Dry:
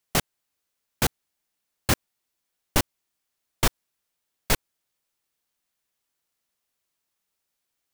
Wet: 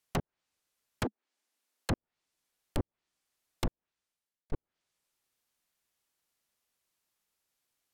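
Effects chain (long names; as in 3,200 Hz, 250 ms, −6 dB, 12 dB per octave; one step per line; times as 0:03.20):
treble cut that deepens with the level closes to 450 Hz, closed at −20.5 dBFS
0:01.04–0:01.90: Butterworth high-pass 210 Hz 96 dB per octave
soft clipping −23 dBFS, distortion −9 dB
0:03.66–0:04.52: fade out
level −1 dB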